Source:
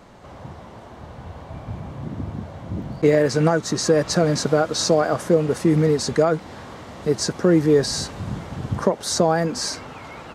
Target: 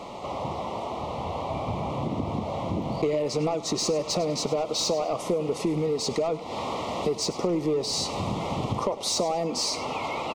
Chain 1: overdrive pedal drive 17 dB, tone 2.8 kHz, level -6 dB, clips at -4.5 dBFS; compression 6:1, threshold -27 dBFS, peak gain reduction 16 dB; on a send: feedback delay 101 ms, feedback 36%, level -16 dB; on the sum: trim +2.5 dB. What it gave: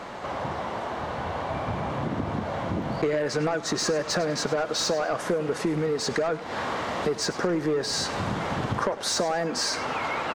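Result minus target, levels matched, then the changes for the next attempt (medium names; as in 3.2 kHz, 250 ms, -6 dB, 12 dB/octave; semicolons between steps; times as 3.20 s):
2 kHz band +9.0 dB
add after compression: Butterworth band-stop 1.6 kHz, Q 1.5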